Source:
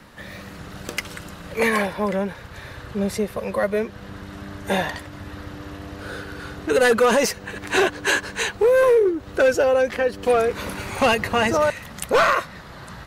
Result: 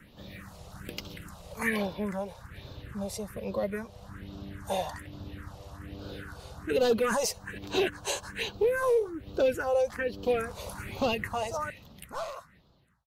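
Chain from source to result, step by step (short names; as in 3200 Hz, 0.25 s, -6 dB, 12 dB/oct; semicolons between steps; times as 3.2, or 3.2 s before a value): ending faded out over 2.45 s; phaser stages 4, 1.2 Hz, lowest notch 260–1900 Hz; gain -6 dB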